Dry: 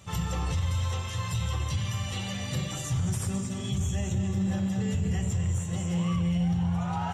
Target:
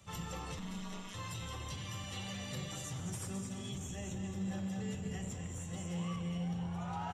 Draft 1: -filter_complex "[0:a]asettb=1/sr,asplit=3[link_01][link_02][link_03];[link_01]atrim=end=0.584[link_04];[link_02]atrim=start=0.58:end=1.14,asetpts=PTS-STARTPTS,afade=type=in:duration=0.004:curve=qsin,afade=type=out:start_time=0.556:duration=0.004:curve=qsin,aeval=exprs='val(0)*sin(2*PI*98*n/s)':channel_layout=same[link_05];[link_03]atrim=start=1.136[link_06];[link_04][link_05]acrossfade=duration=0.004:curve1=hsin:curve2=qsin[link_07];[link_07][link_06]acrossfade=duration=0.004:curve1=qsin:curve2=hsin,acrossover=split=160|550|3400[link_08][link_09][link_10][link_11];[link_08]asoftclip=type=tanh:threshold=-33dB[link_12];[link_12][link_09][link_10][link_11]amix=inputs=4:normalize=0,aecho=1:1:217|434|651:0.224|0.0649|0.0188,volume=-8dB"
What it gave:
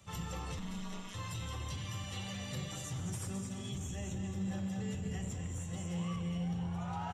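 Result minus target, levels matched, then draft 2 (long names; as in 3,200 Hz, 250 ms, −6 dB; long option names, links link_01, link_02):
soft clipping: distortion −4 dB
-filter_complex "[0:a]asettb=1/sr,asplit=3[link_01][link_02][link_03];[link_01]atrim=end=0.584[link_04];[link_02]atrim=start=0.58:end=1.14,asetpts=PTS-STARTPTS,afade=type=in:duration=0.004:curve=qsin,afade=type=out:start_time=0.556:duration=0.004:curve=qsin,aeval=exprs='val(0)*sin(2*PI*98*n/s)':channel_layout=same[link_05];[link_03]atrim=start=1.136[link_06];[link_04][link_05]acrossfade=duration=0.004:curve1=hsin:curve2=qsin[link_07];[link_07][link_06]acrossfade=duration=0.004:curve1=qsin:curve2=hsin,acrossover=split=160|550|3400[link_08][link_09][link_10][link_11];[link_08]asoftclip=type=tanh:threshold=-39dB[link_12];[link_12][link_09][link_10][link_11]amix=inputs=4:normalize=0,aecho=1:1:217|434|651:0.224|0.0649|0.0188,volume=-8dB"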